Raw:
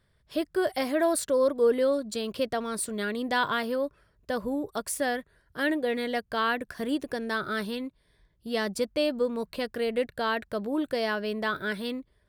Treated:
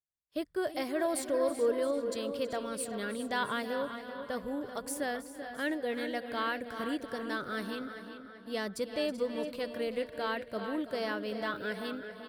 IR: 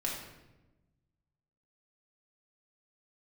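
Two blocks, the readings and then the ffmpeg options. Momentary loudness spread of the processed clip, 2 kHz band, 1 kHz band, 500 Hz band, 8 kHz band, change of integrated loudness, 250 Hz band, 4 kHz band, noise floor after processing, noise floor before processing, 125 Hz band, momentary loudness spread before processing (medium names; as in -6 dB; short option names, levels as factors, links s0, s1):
8 LU, -6.0 dB, -5.5 dB, -5.5 dB, -6.0 dB, -6.0 dB, -5.5 dB, -6.0 dB, -52 dBFS, -69 dBFS, -6.0 dB, 8 LU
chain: -filter_complex "[0:a]asplit=2[s0][s1];[s1]aecho=0:1:324|380|417|669:0.178|0.112|0.141|0.141[s2];[s0][s2]amix=inputs=2:normalize=0,agate=range=0.0224:threshold=0.0158:ratio=3:detection=peak,asplit=2[s3][s4];[s4]adelay=387,lowpass=f=4500:p=1,volume=0.335,asplit=2[s5][s6];[s6]adelay=387,lowpass=f=4500:p=1,volume=0.52,asplit=2[s7][s8];[s8]adelay=387,lowpass=f=4500:p=1,volume=0.52,asplit=2[s9][s10];[s10]adelay=387,lowpass=f=4500:p=1,volume=0.52,asplit=2[s11][s12];[s12]adelay=387,lowpass=f=4500:p=1,volume=0.52,asplit=2[s13][s14];[s14]adelay=387,lowpass=f=4500:p=1,volume=0.52[s15];[s5][s7][s9][s11][s13][s15]amix=inputs=6:normalize=0[s16];[s3][s16]amix=inputs=2:normalize=0,volume=0.473"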